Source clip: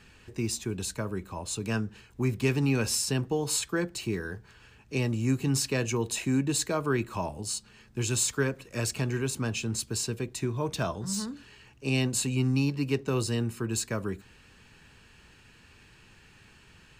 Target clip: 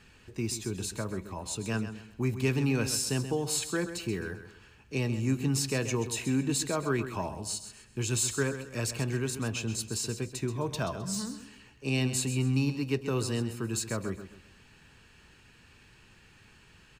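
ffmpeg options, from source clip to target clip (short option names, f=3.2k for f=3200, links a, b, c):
-af "aecho=1:1:131|262|393|524:0.282|0.093|0.0307|0.0101,volume=-2dB"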